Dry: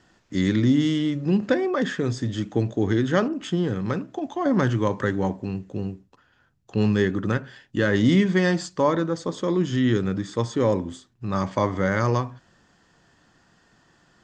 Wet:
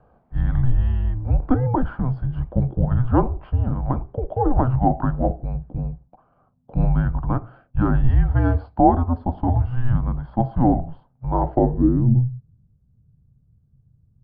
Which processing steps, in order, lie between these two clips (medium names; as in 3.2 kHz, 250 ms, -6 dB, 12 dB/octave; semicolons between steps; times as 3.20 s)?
frequency shift -250 Hz; resampled via 11.025 kHz; low-pass sweep 750 Hz -> 130 Hz, 11.48–12.27 s; trim +3 dB